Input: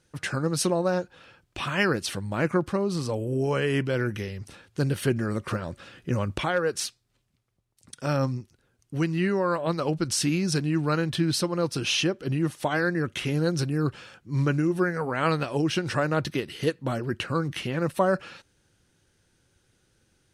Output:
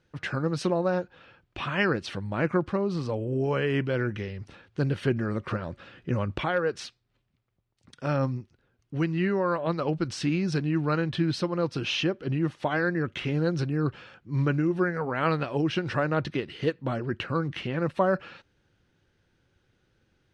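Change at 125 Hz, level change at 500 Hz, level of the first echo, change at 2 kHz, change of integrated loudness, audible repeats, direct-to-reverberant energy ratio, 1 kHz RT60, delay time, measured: -1.0 dB, -1.0 dB, no echo, -1.5 dB, -1.5 dB, no echo, no reverb, no reverb, no echo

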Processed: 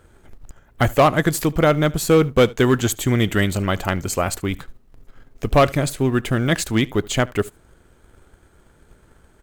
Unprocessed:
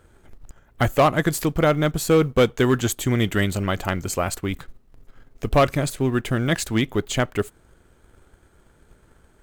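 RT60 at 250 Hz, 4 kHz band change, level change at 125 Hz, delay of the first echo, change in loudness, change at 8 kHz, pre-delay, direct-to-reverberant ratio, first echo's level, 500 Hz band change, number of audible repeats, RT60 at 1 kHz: no reverb, +2.5 dB, +2.5 dB, 74 ms, +2.5 dB, +2.5 dB, no reverb, no reverb, -23.5 dB, +2.5 dB, 1, no reverb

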